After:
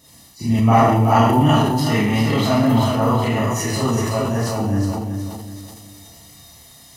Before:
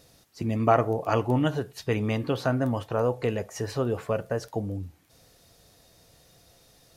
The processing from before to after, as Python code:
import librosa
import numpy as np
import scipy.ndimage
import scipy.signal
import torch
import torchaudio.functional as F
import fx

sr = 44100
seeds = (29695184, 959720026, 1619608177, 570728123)

y = fx.spec_quant(x, sr, step_db=15)
y = scipy.signal.sosfilt(scipy.signal.butter(2, 57.0, 'highpass', fs=sr, output='sos'), y)
y = fx.high_shelf(y, sr, hz=5500.0, db=6.5)
y = y + 0.62 * np.pad(y, (int(1.0 * sr / 1000.0), 0))[:len(y)]
y = fx.echo_feedback(y, sr, ms=375, feedback_pct=36, wet_db=-6.0)
y = fx.rev_schroeder(y, sr, rt60_s=0.66, comb_ms=27, drr_db=-9.5)
y = fx.transient(y, sr, attack_db=-2, sustain_db=5)
y = y * librosa.db_to_amplitude(-1.0)